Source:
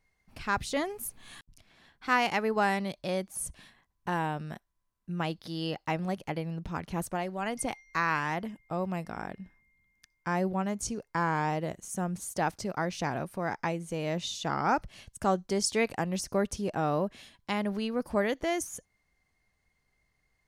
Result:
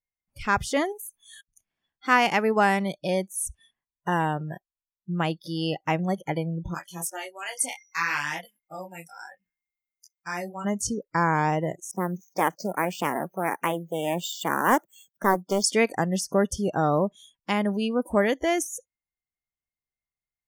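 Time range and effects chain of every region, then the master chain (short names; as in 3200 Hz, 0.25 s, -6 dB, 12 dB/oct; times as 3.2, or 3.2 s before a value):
0.92–1.32 low shelf 440 Hz -11 dB + compressor 10:1, threshold -41 dBFS
6.74–10.65 tilt shelf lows -9.5 dB, about 1500 Hz + detuned doubles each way 23 cents
11.91–15.64 HPF 170 Hz 24 dB/oct + careless resampling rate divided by 4×, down filtered, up hold + Doppler distortion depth 0.53 ms
whole clip: spectral noise reduction 30 dB; notch 4000 Hz, Q 5.4; gain +6 dB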